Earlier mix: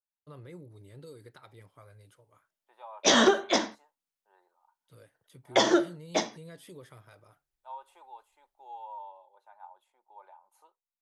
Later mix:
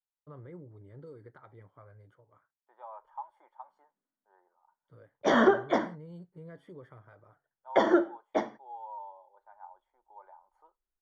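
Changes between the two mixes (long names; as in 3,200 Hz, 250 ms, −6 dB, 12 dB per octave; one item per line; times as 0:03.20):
background: entry +2.20 s
master: add Savitzky-Golay smoothing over 41 samples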